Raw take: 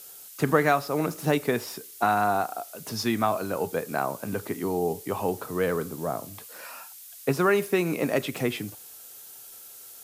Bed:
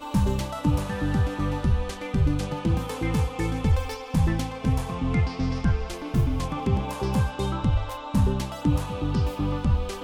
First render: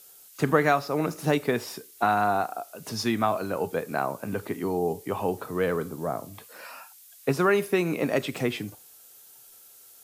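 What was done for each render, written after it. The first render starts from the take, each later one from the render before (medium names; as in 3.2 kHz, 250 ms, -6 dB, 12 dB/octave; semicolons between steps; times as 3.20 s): noise print and reduce 6 dB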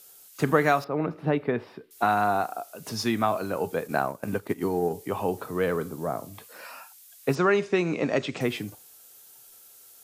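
0.84–1.91 s: distance through air 440 m; 3.87–4.93 s: transient shaper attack +4 dB, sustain -8 dB; 7.35–8.41 s: steep low-pass 7.3 kHz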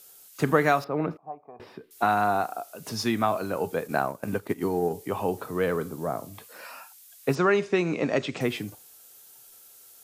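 1.17–1.60 s: cascade formant filter a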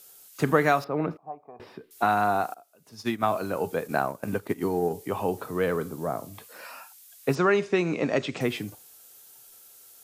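2.54–3.23 s: upward expansion 2.5:1, over -34 dBFS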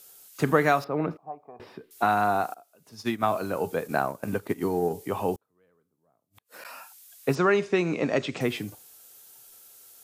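5.35–6.65 s: inverted gate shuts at -32 dBFS, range -40 dB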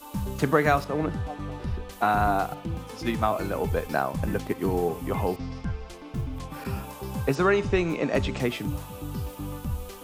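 add bed -8.5 dB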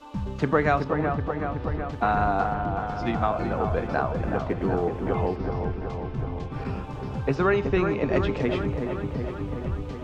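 distance through air 150 m; on a send: feedback echo behind a low-pass 375 ms, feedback 68%, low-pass 1.7 kHz, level -5.5 dB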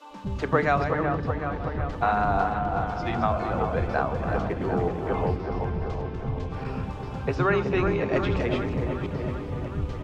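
chunks repeated in reverse 259 ms, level -8 dB; bands offset in time highs, lows 100 ms, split 290 Hz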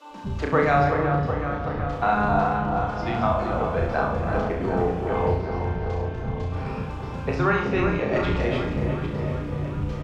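doubling 48 ms -12.5 dB; flutter echo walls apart 5.8 m, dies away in 0.49 s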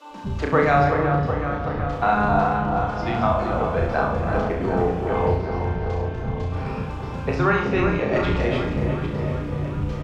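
trim +2 dB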